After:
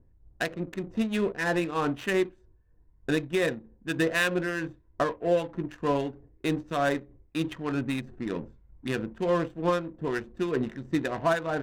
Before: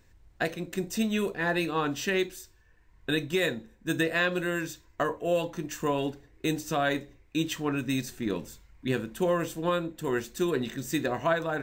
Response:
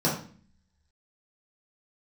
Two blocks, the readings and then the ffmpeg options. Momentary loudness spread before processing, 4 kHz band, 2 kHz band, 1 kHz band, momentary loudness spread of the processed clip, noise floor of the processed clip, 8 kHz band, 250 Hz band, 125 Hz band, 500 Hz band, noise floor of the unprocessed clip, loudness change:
7 LU, -3.0 dB, 0.0 dB, +1.0 dB, 8 LU, -61 dBFS, -5.5 dB, +0.5 dB, +0.5 dB, +1.0 dB, -60 dBFS, +0.5 dB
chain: -filter_complex "[0:a]acrossover=split=1400[a][b];[a]aeval=exprs='val(0)*(1-0.5/2+0.5/2*cos(2*PI*3.2*n/s))':c=same[c];[b]aeval=exprs='val(0)*(1-0.5/2-0.5/2*cos(2*PI*3.2*n/s))':c=same[d];[c][d]amix=inputs=2:normalize=0,adynamicsmooth=sensitivity=7:basefreq=560,adynamicequalizer=threshold=0.00112:dfrequency=5000:dqfactor=2.2:tfrequency=5000:tqfactor=2.2:attack=5:release=100:ratio=0.375:range=2.5:mode=cutabove:tftype=bell,volume=3dB"

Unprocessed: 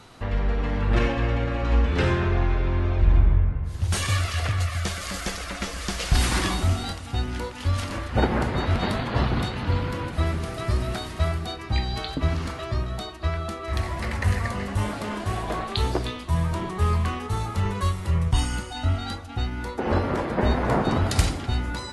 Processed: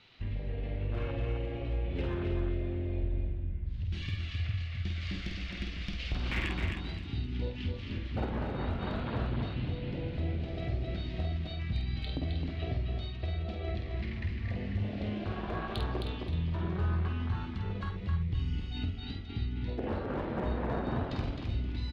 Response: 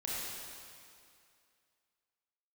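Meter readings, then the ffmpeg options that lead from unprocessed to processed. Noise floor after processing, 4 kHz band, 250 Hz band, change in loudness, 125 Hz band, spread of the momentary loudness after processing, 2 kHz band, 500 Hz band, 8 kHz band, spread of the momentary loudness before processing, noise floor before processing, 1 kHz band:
-40 dBFS, -11.5 dB, -8.0 dB, -9.5 dB, -8.5 dB, 4 LU, -11.5 dB, -10.0 dB, under -25 dB, 7 LU, -36 dBFS, -14.0 dB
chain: -filter_complex "[0:a]afwtdn=0.0562,lowpass=f=4k:w=0.5412,lowpass=f=4k:w=1.3066,highshelf=f=1.7k:t=q:w=1.5:g=10.5,acompressor=threshold=-36dB:ratio=3,volume=27dB,asoftclip=hard,volume=-27dB,asplit=2[a][b];[b]adelay=49,volume=-5.5dB[c];[a][c]amix=inputs=2:normalize=0,aecho=1:1:263|526|789:0.562|0.146|0.038"

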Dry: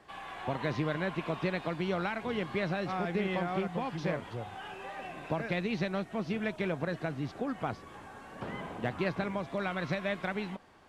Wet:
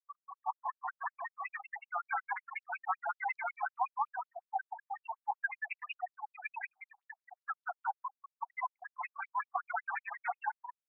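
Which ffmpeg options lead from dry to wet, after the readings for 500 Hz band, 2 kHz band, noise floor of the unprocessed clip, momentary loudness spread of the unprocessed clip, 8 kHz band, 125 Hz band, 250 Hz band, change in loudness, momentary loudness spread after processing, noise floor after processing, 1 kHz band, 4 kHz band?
-17.0 dB, -1.5 dB, -50 dBFS, 10 LU, n/a, under -40 dB, under -40 dB, -5.0 dB, 8 LU, under -85 dBFS, +2.5 dB, under -15 dB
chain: -filter_complex "[0:a]asplit=6[a][b][c][d][e][f];[b]adelay=196,afreqshift=120,volume=-4dB[g];[c]adelay=392,afreqshift=240,volume=-11.3dB[h];[d]adelay=588,afreqshift=360,volume=-18.7dB[i];[e]adelay=784,afreqshift=480,volume=-26dB[j];[f]adelay=980,afreqshift=600,volume=-33.3dB[k];[a][g][h][i][j][k]amix=inputs=6:normalize=0,aeval=exprs='clip(val(0),-1,0.0266)':c=same,highpass=450,afftfilt=real='re*gte(hypot(re,im),0.0398)':imag='im*gte(hypot(re,im),0.0398)':win_size=1024:overlap=0.75,dynaudnorm=f=480:g=11:m=7.5dB,equalizer=f=3.3k:t=o:w=1:g=-7,alimiter=level_in=3dB:limit=-24dB:level=0:latency=1:release=93,volume=-3dB,afftfilt=real='re*between(b*sr/1024,960*pow(5500/960,0.5+0.5*sin(2*PI*5.4*pts/sr))/1.41,960*pow(5500/960,0.5+0.5*sin(2*PI*5.4*pts/sr))*1.41)':imag='im*between(b*sr/1024,960*pow(5500/960,0.5+0.5*sin(2*PI*5.4*pts/sr))/1.41,960*pow(5500/960,0.5+0.5*sin(2*PI*5.4*pts/sr))*1.41)':win_size=1024:overlap=0.75,volume=8.5dB"

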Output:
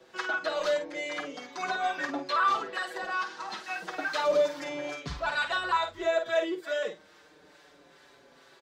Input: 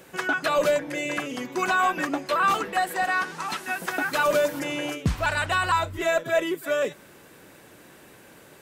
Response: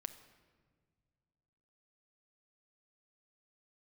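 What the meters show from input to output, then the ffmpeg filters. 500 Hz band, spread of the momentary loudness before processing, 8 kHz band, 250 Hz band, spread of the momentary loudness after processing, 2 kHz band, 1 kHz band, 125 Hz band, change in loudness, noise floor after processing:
-4.0 dB, 7 LU, -10.5 dB, -8.5 dB, 10 LU, -6.0 dB, -5.5 dB, -15.5 dB, -5.0 dB, -58 dBFS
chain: -filter_complex "[0:a]bandreject=f=50:t=h:w=6,bandreject=f=100:t=h:w=6,acrossover=split=810[a][b];[a]aeval=exprs='val(0)*(1-0.5/2+0.5/2*cos(2*PI*2.3*n/s))':c=same[c];[b]aeval=exprs='val(0)*(1-0.5/2-0.5/2*cos(2*PI*2.3*n/s))':c=same[d];[c][d]amix=inputs=2:normalize=0,bass=f=250:g=-14,treble=f=4k:g=-15,asplit=2[e][f];[f]adelay=49,volume=-8dB[g];[e][g]amix=inputs=2:normalize=0,acrossover=split=110|460|6800[h][i][j][k];[h]acontrast=69[l];[j]aexciter=amount=6.5:drive=3.2:freq=3.7k[m];[k]equalizer=f=13k:t=o:w=0.37:g=-7[n];[l][i][m][n]amix=inputs=4:normalize=0,asplit=2[o][p];[p]adelay=5.7,afreqshift=-0.33[q];[o][q]amix=inputs=2:normalize=1"

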